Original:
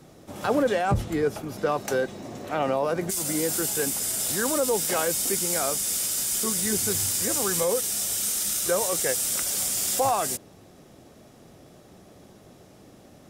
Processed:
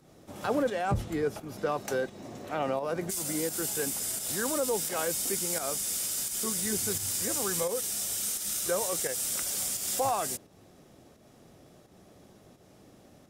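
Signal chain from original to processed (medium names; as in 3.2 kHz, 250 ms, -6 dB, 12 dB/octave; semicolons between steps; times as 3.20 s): volume shaper 86 bpm, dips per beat 1, -7 dB, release 187 ms; trim -5 dB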